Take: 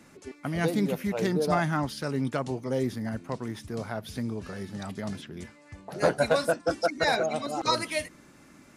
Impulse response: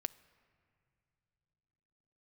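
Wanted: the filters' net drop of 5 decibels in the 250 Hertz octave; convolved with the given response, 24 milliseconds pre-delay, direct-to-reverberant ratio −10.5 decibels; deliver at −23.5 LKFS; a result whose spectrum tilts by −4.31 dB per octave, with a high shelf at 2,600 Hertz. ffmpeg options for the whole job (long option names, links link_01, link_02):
-filter_complex "[0:a]equalizer=frequency=250:width_type=o:gain=-7,highshelf=frequency=2600:gain=-5,asplit=2[link_01][link_02];[1:a]atrim=start_sample=2205,adelay=24[link_03];[link_02][link_03]afir=irnorm=-1:irlink=0,volume=12dB[link_04];[link_01][link_04]amix=inputs=2:normalize=0,volume=-3dB"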